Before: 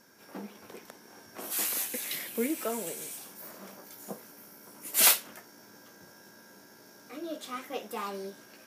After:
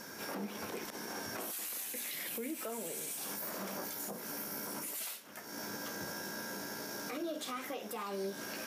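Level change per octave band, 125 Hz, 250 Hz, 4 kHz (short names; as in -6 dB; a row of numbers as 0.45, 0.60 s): +2.5, -2.5, -7.5 dB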